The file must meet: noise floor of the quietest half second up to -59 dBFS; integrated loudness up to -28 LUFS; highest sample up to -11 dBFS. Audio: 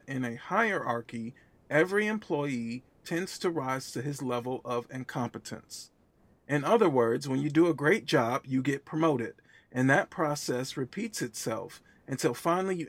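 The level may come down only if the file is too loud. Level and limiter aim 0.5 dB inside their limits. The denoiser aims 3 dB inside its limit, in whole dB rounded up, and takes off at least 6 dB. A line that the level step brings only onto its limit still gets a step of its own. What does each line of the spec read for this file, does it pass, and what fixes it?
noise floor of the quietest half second -64 dBFS: pass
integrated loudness -30.0 LUFS: pass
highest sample -9.0 dBFS: fail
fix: peak limiter -11.5 dBFS

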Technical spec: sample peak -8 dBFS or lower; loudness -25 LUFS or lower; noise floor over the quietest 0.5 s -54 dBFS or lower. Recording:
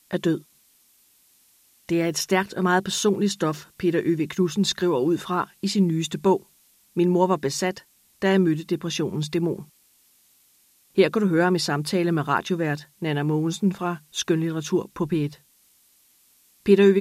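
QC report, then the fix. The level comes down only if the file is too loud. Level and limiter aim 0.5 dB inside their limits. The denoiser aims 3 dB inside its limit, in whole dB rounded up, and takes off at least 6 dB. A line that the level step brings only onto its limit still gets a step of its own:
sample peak -5.0 dBFS: fail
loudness -23.5 LUFS: fail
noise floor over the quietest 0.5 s -60 dBFS: pass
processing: trim -2 dB; peak limiter -8.5 dBFS

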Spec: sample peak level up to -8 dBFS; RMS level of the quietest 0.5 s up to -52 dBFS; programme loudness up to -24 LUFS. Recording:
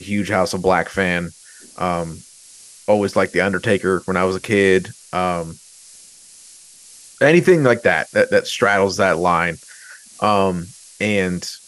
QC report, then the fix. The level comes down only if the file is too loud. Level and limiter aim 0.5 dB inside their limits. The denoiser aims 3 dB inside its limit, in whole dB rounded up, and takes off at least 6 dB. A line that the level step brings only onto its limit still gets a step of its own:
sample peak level -2.0 dBFS: fail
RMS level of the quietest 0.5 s -44 dBFS: fail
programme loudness -18.0 LUFS: fail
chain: noise reduction 6 dB, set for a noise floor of -44 dBFS; trim -6.5 dB

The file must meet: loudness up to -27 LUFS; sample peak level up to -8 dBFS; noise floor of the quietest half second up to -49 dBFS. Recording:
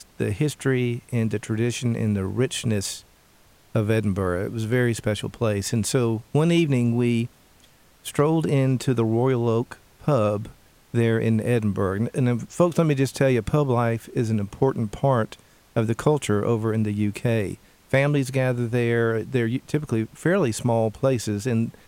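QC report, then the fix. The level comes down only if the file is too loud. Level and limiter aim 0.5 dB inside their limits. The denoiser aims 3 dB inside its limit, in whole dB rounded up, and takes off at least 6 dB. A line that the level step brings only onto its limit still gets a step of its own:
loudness -23.5 LUFS: fail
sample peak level -7.0 dBFS: fail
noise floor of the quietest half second -56 dBFS: pass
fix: trim -4 dB

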